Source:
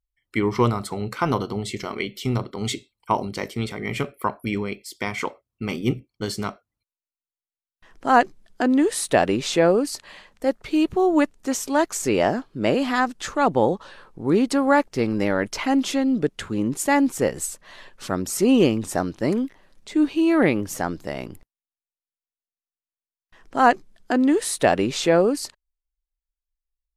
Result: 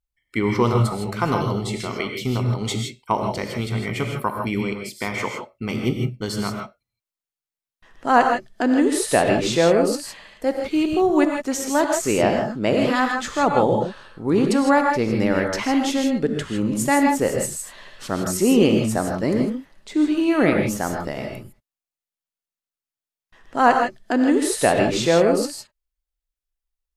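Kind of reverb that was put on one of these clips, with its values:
reverb whose tail is shaped and stops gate 180 ms rising, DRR 2.5 dB

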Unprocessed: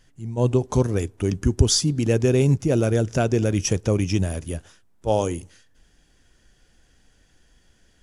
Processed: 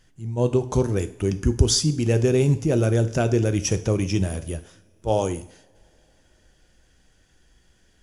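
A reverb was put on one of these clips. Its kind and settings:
coupled-rooms reverb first 0.54 s, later 3.8 s, from −27 dB, DRR 10 dB
level −1 dB

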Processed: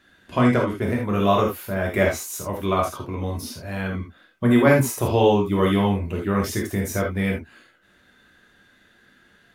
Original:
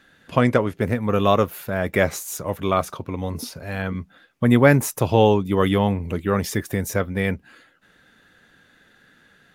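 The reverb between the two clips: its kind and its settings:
reverb whose tail is shaped and stops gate 100 ms flat, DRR −1.5 dB
level −4.5 dB

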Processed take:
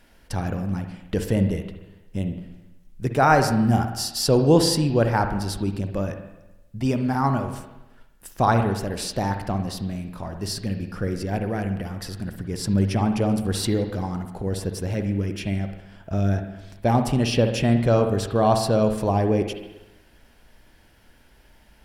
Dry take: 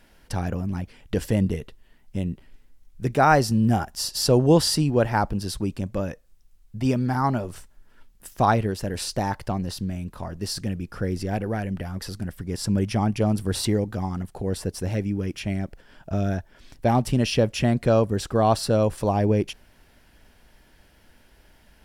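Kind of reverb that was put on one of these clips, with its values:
spring reverb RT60 1 s, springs 51/60 ms, chirp 25 ms, DRR 6.5 dB

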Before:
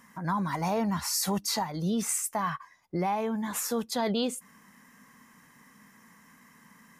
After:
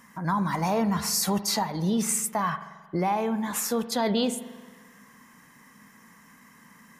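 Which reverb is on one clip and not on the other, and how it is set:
spring reverb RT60 1.4 s, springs 44 ms, chirp 40 ms, DRR 12.5 dB
level +3 dB

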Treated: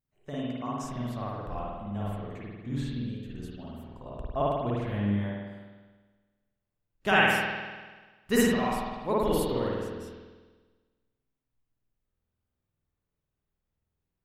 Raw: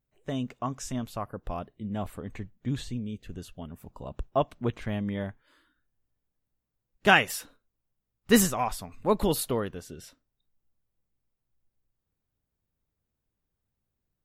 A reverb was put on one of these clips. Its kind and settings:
spring reverb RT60 1.4 s, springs 49 ms, chirp 30 ms, DRR −6.5 dB
level −7.5 dB

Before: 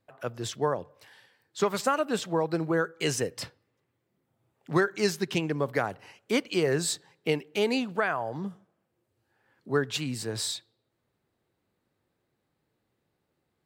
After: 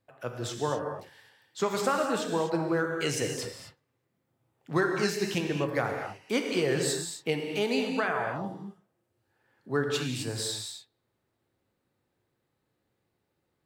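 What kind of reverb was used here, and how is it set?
reverb whose tail is shaped and stops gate 280 ms flat, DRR 2 dB
level −2.5 dB

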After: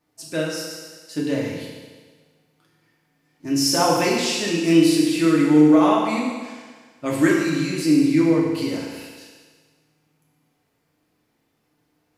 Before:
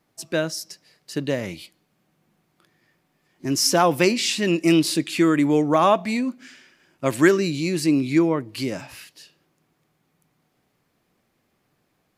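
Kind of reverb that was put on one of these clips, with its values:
feedback delay network reverb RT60 1.5 s, low-frequency decay 0.85×, high-frequency decay 1×, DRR −4.5 dB
level −6 dB

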